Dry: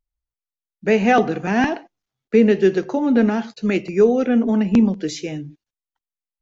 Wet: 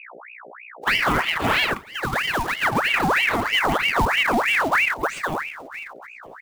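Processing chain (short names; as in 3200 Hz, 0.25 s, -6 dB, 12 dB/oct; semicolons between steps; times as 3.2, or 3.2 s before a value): bin magnitudes rounded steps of 15 dB; treble ducked by the level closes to 2300 Hz, closed at -16 dBFS; echoes that change speed 0.186 s, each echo +3 st, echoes 3, each echo -6 dB; outdoor echo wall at 170 m, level -24 dB; in parallel at -2 dB: limiter -13.5 dBFS, peak gain reduction 11.5 dB; on the sum: short-mantissa float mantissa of 2-bit; compressor, threshold -14 dBFS, peak gain reduction 9 dB; hum 60 Hz, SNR 19 dB; 1.74–2.65 HPF 390 Hz; 4.97–5.39 bell 3500 Hz -5.5 dB 2.5 oct; ring modulator with a swept carrier 1500 Hz, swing 70%, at 3.1 Hz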